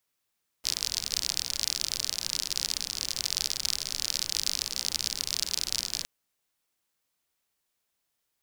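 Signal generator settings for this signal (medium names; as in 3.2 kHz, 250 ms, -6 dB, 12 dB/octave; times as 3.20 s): rain from filtered ticks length 5.41 s, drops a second 53, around 4.9 kHz, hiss -15 dB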